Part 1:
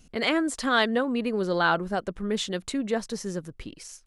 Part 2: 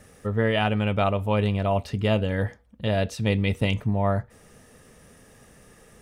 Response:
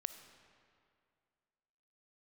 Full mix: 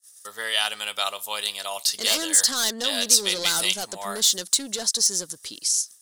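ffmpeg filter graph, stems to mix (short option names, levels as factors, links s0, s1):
-filter_complex "[0:a]highpass=45,asplit=2[s0][s1];[s1]highpass=f=720:p=1,volume=14.1,asoftclip=type=tanh:threshold=0.335[s2];[s0][s2]amix=inputs=2:normalize=0,lowpass=f=6700:p=1,volume=0.501,adelay=1850,volume=0.178[s3];[1:a]highpass=1300,agate=range=0.0112:threshold=0.00178:ratio=16:detection=peak,volume=1.33[s4];[s3][s4]amix=inputs=2:normalize=0,aexciter=amount=8.4:drive=7.6:freq=3700"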